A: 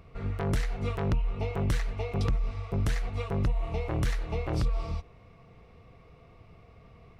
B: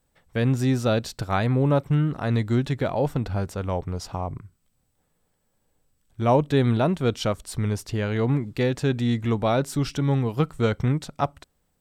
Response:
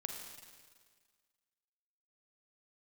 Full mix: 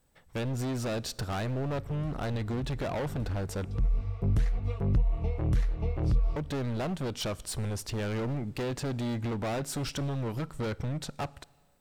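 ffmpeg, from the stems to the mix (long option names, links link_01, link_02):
-filter_complex "[0:a]lowshelf=frequency=470:gain=12,adelay=1500,volume=-9.5dB[link_01];[1:a]acompressor=threshold=-24dB:ratio=4,asoftclip=type=hard:threshold=-30.5dB,volume=0dB,asplit=3[link_02][link_03][link_04];[link_02]atrim=end=3.65,asetpts=PTS-STARTPTS,afade=type=out:start_time=3.646:duration=0.004:curve=hsin[link_05];[link_03]atrim=start=3.65:end=6.36,asetpts=PTS-STARTPTS,volume=0[link_06];[link_04]atrim=start=6.36,asetpts=PTS-STARTPTS,afade=type=in:duration=0.004:curve=hsin[link_07];[link_05][link_06][link_07]concat=n=3:v=0:a=1,asplit=3[link_08][link_09][link_10];[link_09]volume=-16.5dB[link_11];[link_10]apad=whole_len=383534[link_12];[link_01][link_12]sidechaincompress=threshold=-50dB:ratio=8:attack=16:release=180[link_13];[2:a]atrim=start_sample=2205[link_14];[link_11][link_14]afir=irnorm=-1:irlink=0[link_15];[link_13][link_08][link_15]amix=inputs=3:normalize=0"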